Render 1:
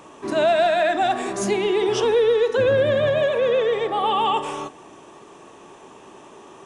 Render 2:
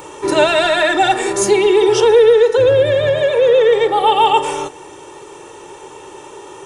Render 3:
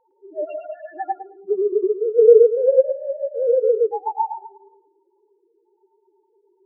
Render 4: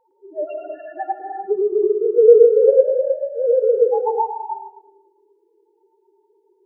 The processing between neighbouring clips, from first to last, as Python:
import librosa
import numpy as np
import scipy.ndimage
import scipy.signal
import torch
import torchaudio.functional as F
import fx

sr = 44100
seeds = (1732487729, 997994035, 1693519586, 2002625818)

y1 = fx.high_shelf(x, sr, hz=8900.0, db=10.5)
y1 = y1 + 0.82 * np.pad(y1, (int(2.2 * sr / 1000.0), 0))[:len(y1)]
y1 = fx.rider(y1, sr, range_db=4, speed_s=2.0)
y1 = F.gain(torch.from_numpy(y1), 4.5).numpy()
y2 = fx.spec_topn(y1, sr, count=2)
y2 = fx.echo_feedback(y2, sr, ms=109, feedback_pct=35, wet_db=-4)
y2 = fx.upward_expand(y2, sr, threshold_db=-20.0, expansion=2.5)
y3 = fx.rev_gated(y2, sr, seeds[0], gate_ms=360, shape='rising', drr_db=4.0)
y3 = F.gain(torch.from_numpy(y3), 1.0).numpy()